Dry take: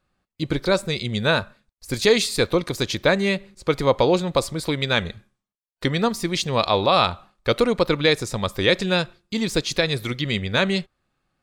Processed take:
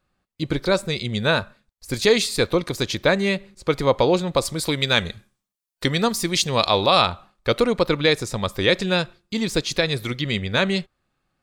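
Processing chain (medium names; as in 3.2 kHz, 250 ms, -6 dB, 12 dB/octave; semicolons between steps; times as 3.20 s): 4.45–7.02 s: treble shelf 3.9 kHz +8.5 dB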